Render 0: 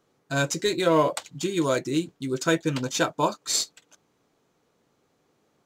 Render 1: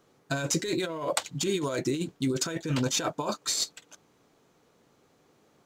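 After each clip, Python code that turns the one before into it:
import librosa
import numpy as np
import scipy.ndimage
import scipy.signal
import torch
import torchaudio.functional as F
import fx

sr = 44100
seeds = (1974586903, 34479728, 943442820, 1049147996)

y = fx.over_compress(x, sr, threshold_db=-29.0, ratio=-1.0)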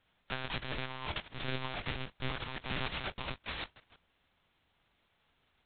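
y = fx.envelope_flatten(x, sr, power=0.1)
y = fx.lpc_monotone(y, sr, seeds[0], pitch_hz=130.0, order=10)
y = y * 10.0 ** (-4.5 / 20.0)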